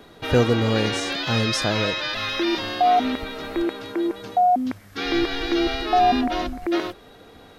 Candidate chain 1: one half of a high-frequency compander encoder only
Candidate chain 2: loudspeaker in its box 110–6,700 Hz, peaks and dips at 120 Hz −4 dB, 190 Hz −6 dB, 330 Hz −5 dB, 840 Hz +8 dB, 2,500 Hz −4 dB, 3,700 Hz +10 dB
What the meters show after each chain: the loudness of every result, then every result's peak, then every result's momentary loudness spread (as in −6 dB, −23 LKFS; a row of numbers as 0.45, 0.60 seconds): −22.5, −20.5 LKFS; −7.5, −6.0 dBFS; 10, 12 LU